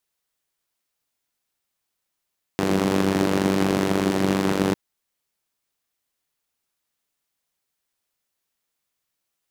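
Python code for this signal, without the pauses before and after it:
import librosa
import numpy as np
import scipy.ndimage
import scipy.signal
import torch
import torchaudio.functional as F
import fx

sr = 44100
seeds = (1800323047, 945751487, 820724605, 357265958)

y = fx.engine_four(sr, seeds[0], length_s=2.15, rpm=2900, resonances_hz=(190.0, 310.0))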